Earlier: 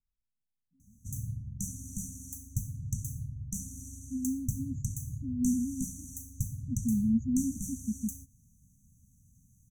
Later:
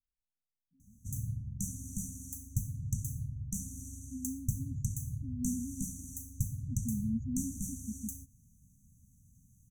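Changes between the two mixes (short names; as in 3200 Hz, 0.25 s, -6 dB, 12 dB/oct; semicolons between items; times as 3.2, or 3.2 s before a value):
second voice -7.5 dB; master: add bell 5200 Hz -4 dB 0.5 oct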